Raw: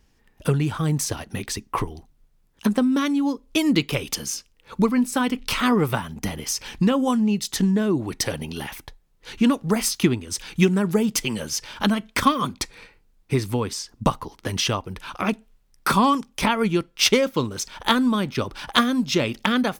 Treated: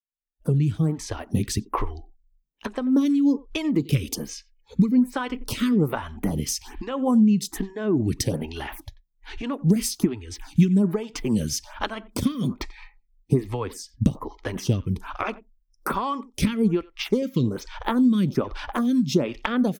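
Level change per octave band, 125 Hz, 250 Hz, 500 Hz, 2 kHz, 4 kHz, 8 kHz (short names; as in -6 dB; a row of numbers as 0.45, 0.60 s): +1.5, 0.0, -3.0, -8.0, -9.0, -5.5 dB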